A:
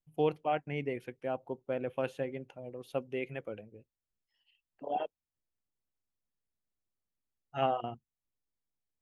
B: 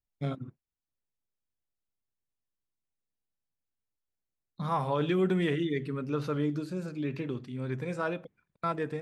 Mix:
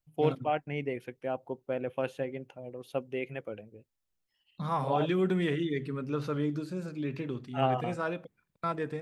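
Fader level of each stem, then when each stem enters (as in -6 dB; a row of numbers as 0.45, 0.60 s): +1.5, -1.0 dB; 0.00, 0.00 s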